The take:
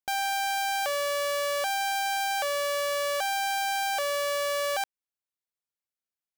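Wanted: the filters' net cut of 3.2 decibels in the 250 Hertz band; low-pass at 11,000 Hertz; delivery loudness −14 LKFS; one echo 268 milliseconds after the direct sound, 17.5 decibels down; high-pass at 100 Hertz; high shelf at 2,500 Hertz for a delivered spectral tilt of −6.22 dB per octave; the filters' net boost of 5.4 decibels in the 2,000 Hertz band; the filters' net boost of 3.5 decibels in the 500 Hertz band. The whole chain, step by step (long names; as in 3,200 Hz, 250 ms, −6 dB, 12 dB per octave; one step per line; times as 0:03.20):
high-pass filter 100 Hz
low-pass filter 11,000 Hz
parametric band 250 Hz −6.5 dB
parametric band 500 Hz +4.5 dB
parametric band 2,000 Hz +4.5 dB
high-shelf EQ 2,500 Hz +5.5 dB
single-tap delay 268 ms −17.5 dB
level +10 dB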